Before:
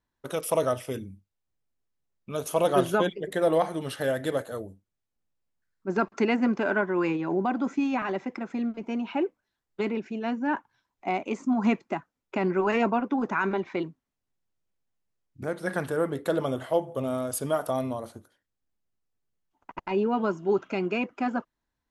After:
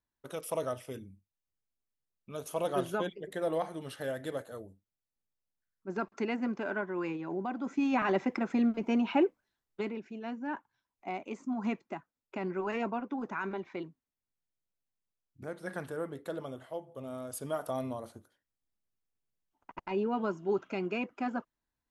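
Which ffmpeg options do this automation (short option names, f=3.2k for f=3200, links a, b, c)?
-af "volume=11.5dB,afade=t=in:st=7.62:d=0.55:silence=0.281838,afade=t=out:st=9.09:d=0.86:silence=0.266073,afade=t=out:st=15.81:d=1.03:silence=0.501187,afade=t=in:st=16.84:d=1.04:silence=0.334965"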